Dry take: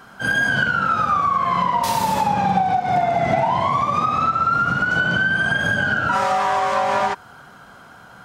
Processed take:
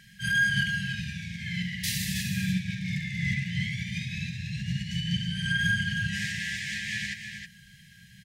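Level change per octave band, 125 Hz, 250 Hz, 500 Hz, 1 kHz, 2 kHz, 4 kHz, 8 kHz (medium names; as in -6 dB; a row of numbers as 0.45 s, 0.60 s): -1.5 dB, -4.5 dB, under -40 dB, under -40 dB, -8.5 dB, -1.5 dB, -1.5 dB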